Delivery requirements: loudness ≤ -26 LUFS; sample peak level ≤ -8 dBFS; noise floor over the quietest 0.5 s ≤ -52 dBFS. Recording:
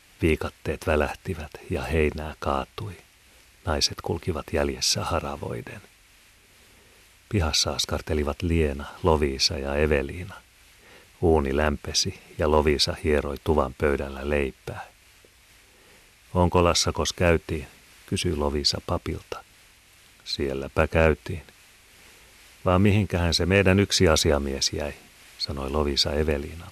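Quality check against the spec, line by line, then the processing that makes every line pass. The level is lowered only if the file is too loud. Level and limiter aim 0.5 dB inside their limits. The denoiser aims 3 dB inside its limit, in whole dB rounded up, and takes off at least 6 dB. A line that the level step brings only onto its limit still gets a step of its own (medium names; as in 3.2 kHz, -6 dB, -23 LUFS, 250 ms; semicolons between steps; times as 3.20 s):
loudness -24.5 LUFS: fail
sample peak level -5.5 dBFS: fail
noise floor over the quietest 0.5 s -56 dBFS: pass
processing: trim -2 dB; peak limiter -8.5 dBFS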